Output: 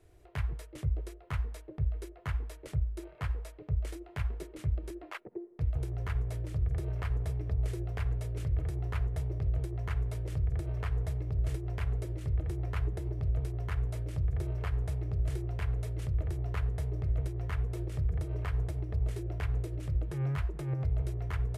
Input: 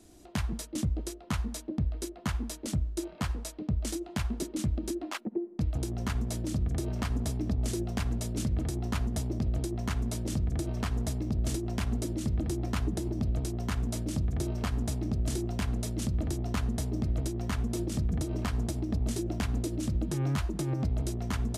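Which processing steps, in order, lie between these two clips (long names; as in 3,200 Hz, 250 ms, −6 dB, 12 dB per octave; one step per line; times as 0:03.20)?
drawn EQ curve 130 Hz 0 dB, 230 Hz −26 dB, 420 Hz −1 dB, 760 Hz −7 dB, 2,100 Hz −2 dB, 3,600 Hz −12 dB, 6,300 Hz −18 dB, 13,000 Hz −12 dB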